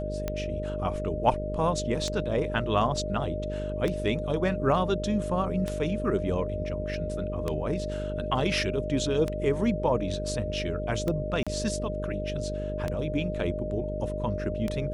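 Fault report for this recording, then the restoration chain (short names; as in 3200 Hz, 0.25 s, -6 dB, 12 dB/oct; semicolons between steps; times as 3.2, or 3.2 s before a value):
buzz 50 Hz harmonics 11 -34 dBFS
tick 33 1/3 rpm -16 dBFS
tone 610 Hz -33 dBFS
11.43–11.47 gap 36 ms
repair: de-click; de-hum 50 Hz, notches 11; notch 610 Hz, Q 30; interpolate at 11.43, 36 ms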